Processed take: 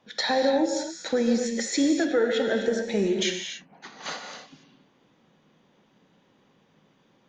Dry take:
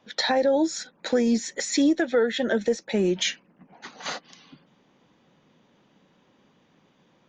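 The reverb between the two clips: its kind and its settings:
reverb whose tail is shaped and stops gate 310 ms flat, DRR 3 dB
level −2.5 dB

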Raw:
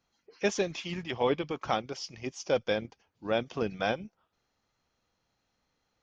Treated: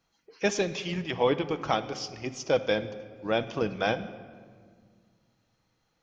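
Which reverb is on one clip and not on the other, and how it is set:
rectangular room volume 2,700 cubic metres, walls mixed, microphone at 0.62 metres
level +2.5 dB

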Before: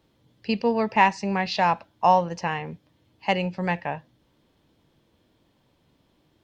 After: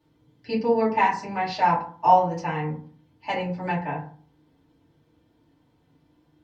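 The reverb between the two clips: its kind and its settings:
feedback delay network reverb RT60 0.46 s, low-frequency decay 1.35×, high-frequency decay 0.4×, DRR −8.5 dB
level −10.5 dB

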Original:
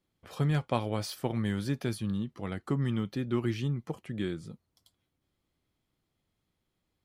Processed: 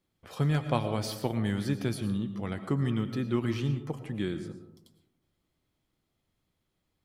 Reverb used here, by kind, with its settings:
comb and all-pass reverb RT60 0.88 s, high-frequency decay 0.3×, pre-delay 70 ms, DRR 9.5 dB
level +1 dB

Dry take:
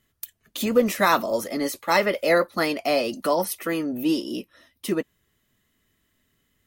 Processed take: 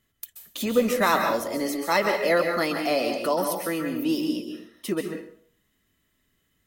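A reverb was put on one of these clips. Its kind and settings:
dense smooth reverb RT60 0.54 s, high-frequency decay 0.85×, pre-delay 120 ms, DRR 4 dB
level −2.5 dB

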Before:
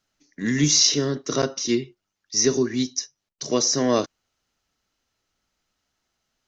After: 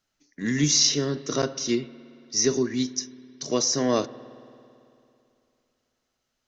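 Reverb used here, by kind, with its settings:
spring reverb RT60 2.7 s, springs 55 ms, chirp 60 ms, DRR 16.5 dB
level −2.5 dB

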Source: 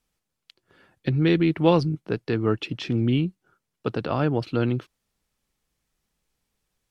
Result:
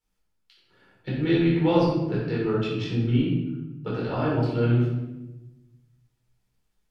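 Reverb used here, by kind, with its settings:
rectangular room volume 440 cubic metres, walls mixed, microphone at 4.3 metres
level −12 dB

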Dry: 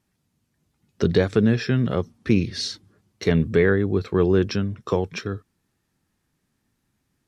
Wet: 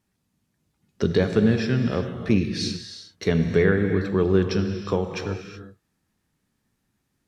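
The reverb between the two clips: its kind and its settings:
reverb whose tail is shaped and stops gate 400 ms flat, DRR 5.5 dB
level −2 dB

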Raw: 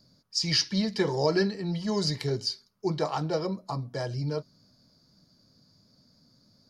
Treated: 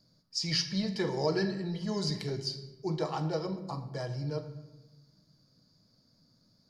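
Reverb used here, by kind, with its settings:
rectangular room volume 520 cubic metres, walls mixed, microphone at 0.58 metres
level −5.5 dB

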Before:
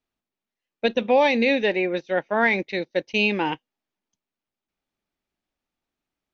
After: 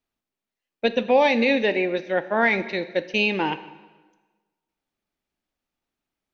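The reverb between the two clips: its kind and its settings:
dense smooth reverb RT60 1.3 s, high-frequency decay 0.85×, DRR 12 dB

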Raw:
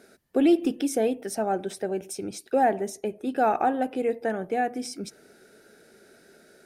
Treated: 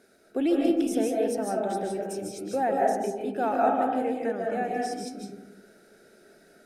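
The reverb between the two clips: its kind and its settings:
comb and all-pass reverb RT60 1.1 s, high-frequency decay 0.3×, pre-delay 110 ms, DRR −2 dB
level −5.5 dB

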